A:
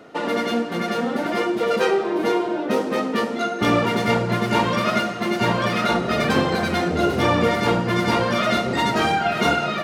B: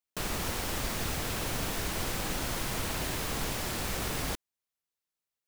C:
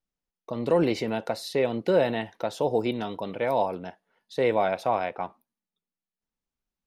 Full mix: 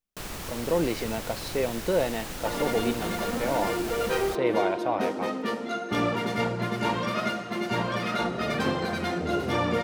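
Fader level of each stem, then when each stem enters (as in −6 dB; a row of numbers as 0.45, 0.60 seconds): −7.5, −3.5, −3.0 decibels; 2.30, 0.00, 0.00 seconds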